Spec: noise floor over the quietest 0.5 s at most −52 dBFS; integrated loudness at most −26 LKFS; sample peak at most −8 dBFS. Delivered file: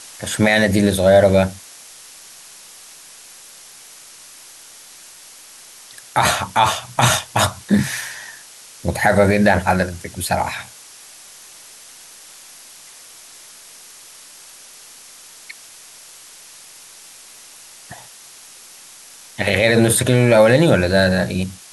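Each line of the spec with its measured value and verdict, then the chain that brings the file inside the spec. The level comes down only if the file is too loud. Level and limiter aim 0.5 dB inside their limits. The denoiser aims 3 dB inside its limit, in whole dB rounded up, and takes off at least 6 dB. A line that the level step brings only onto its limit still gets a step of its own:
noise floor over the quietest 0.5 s −42 dBFS: out of spec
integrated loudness −16.5 LKFS: out of spec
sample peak −2.5 dBFS: out of spec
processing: broadband denoise 6 dB, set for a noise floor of −42 dBFS
level −10 dB

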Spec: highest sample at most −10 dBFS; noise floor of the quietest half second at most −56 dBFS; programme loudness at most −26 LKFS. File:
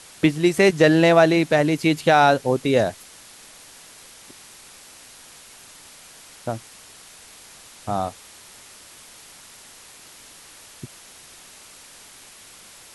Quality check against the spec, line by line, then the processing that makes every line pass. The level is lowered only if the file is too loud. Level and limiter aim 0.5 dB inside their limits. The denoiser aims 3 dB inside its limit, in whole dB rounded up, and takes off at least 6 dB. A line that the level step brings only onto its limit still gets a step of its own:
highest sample −3.5 dBFS: out of spec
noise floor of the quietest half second −46 dBFS: out of spec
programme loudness −18.5 LKFS: out of spec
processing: broadband denoise 6 dB, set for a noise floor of −46 dBFS
level −8 dB

